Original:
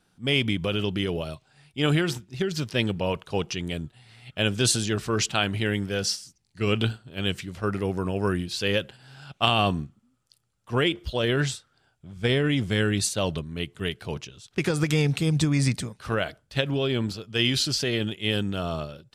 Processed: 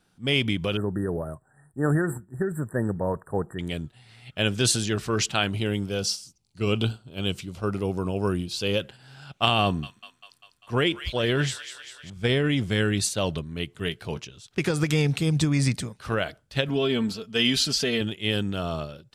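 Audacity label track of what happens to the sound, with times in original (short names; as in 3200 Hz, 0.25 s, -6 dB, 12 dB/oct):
0.770000	3.590000	brick-wall FIR band-stop 1900–7400 Hz
5.490000	8.800000	bell 1800 Hz -12 dB 0.45 oct
9.630000	12.100000	thin delay 0.198 s, feedback 65%, high-pass 1700 Hz, level -8.5 dB
13.790000	14.230000	doubler 18 ms -13 dB
16.680000	18.010000	comb 4.5 ms, depth 62%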